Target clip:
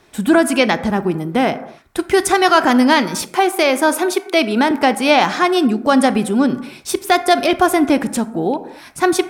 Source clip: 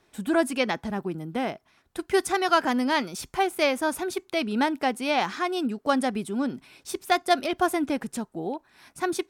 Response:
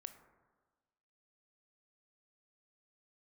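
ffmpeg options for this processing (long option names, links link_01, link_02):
-filter_complex "[0:a]asettb=1/sr,asplit=3[link_01][link_02][link_03];[link_01]atrim=end=3.224[link_04];[link_02]atrim=start=3.22:end=4.71,asetpts=PTS-STARTPTS,afade=type=in:duration=0.004:curve=qsin,afade=type=out:start_time=1.486:duration=0.004:curve=qsin,highpass=frequency=240:width=0.5412,highpass=frequency=240:width=1.3066[link_05];[link_03]atrim=start=4.706[link_06];[link_04][link_05]acrossfade=duration=0.004:curve1=hsin:curve2=qsin[link_07];[link_07][link_06]acrossfade=duration=0.004:curve1=qsin:curve2=hsin,alimiter=limit=-15dB:level=0:latency=1:release=75,asplit=2[link_08][link_09];[1:a]atrim=start_sample=2205,afade=type=out:start_time=0.32:duration=0.01,atrim=end_sample=14553[link_10];[link_09][link_10]afir=irnorm=-1:irlink=0,volume=11.5dB[link_11];[link_08][link_11]amix=inputs=2:normalize=0,volume=3dB"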